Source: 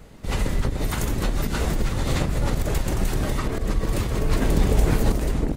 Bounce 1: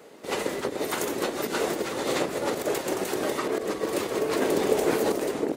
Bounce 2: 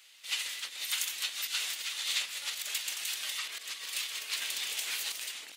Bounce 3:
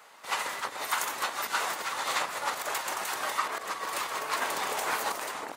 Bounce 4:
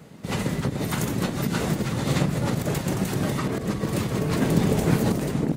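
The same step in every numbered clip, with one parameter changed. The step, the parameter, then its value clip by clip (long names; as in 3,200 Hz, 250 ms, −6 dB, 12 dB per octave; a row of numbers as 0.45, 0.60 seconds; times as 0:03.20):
high-pass with resonance, frequency: 390, 3,000, 1,000, 150 Hertz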